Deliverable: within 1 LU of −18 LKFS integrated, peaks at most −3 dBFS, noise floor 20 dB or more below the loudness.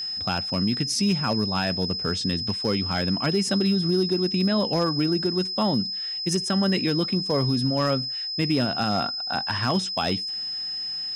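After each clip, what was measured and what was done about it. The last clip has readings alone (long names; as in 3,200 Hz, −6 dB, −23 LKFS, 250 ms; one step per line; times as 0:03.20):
share of clipped samples 0.3%; peaks flattened at −15.0 dBFS; interfering tone 5,100 Hz; level of the tone −28 dBFS; integrated loudness −24.0 LKFS; sample peak −15.0 dBFS; target loudness −18.0 LKFS
→ clipped peaks rebuilt −15 dBFS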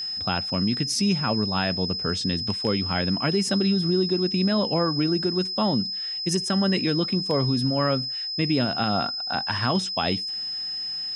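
share of clipped samples 0.0%; interfering tone 5,100 Hz; level of the tone −28 dBFS
→ notch filter 5,100 Hz, Q 30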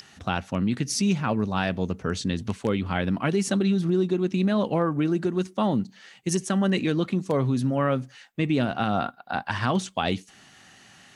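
interfering tone none found; integrated loudness −26.0 LKFS; sample peak −9.5 dBFS; target loudness −18.0 LKFS
→ level +8 dB
brickwall limiter −3 dBFS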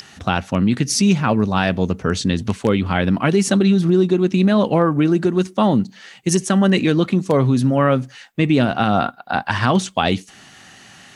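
integrated loudness −18.0 LKFS; sample peak −3.0 dBFS; background noise floor −46 dBFS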